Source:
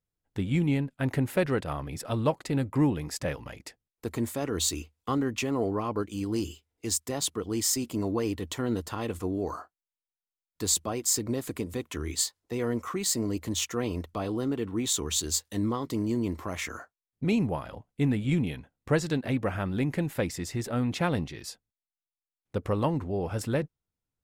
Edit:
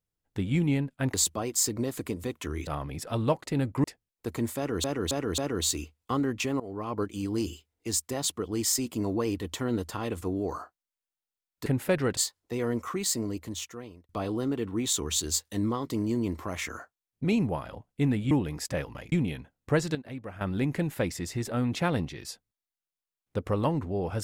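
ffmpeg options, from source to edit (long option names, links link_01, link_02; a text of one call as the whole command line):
ffmpeg -i in.wav -filter_complex "[0:a]asplit=15[link_01][link_02][link_03][link_04][link_05][link_06][link_07][link_08][link_09][link_10][link_11][link_12][link_13][link_14][link_15];[link_01]atrim=end=1.142[link_16];[link_02]atrim=start=10.638:end=12.172[link_17];[link_03]atrim=start=1.648:end=2.822[link_18];[link_04]atrim=start=3.628:end=4.632[link_19];[link_05]atrim=start=4.358:end=4.632[link_20];[link_06]atrim=start=4.358:end=4.632[link_21];[link_07]atrim=start=4.358:end=5.58,asetpts=PTS-STARTPTS,afade=type=out:start_time=1.218:duration=0.004:curve=hsin:silence=0.112202[link_22];[link_08]atrim=start=5.58:end=10.642,asetpts=PTS-STARTPTS,afade=type=in:duration=0.4:silence=0.112202[link_23];[link_09]atrim=start=1.138:end=1.652[link_24];[link_10]atrim=start=12.168:end=14.09,asetpts=PTS-STARTPTS,afade=type=out:start_time=0.832:duration=1.09[link_25];[link_11]atrim=start=14.09:end=18.312,asetpts=PTS-STARTPTS,afade=type=in:duration=0.004:curve=hsin[link_26];[link_12]atrim=start=2.818:end=3.632[link_27];[link_13]atrim=start=18.308:end=19.142[link_28];[link_14]atrim=start=19.138:end=19.602,asetpts=PTS-STARTPTS,volume=-11dB[link_29];[link_15]atrim=start=19.598[link_30];[link_16][link_17]acrossfade=duration=0.004:curve1=hsin:curve2=hsin[link_31];[link_31][link_18]acrossfade=duration=0.004:curve1=hsin:curve2=hsin[link_32];[link_32][link_19]acrossfade=duration=0.004:curve1=hsin:curve2=hsin[link_33];[link_33][link_20]acrossfade=duration=0.004:curve1=hsin:curve2=hsin[link_34];[link_34][link_21]acrossfade=duration=0.004:curve1=hsin:curve2=hsin[link_35];[link_22][link_23]concat=n=2:v=0:a=1[link_36];[link_35][link_36]acrossfade=duration=0.004:curve1=hsin:curve2=hsin[link_37];[link_37][link_24]acrossfade=duration=0.004:curve1=hsin:curve2=hsin[link_38];[link_25][link_26]concat=n=2:v=0:a=1[link_39];[link_38][link_39]acrossfade=duration=0.004:curve1=hsin:curve2=hsin[link_40];[link_40][link_27]acrossfade=duration=0.004:curve1=hsin:curve2=hsin[link_41];[link_41][link_28]acrossfade=duration=0.004:curve1=hsin:curve2=hsin[link_42];[link_42][link_29]acrossfade=duration=0.004:curve1=hsin:curve2=hsin[link_43];[link_43][link_30]acrossfade=duration=0.004:curve1=hsin:curve2=hsin" out.wav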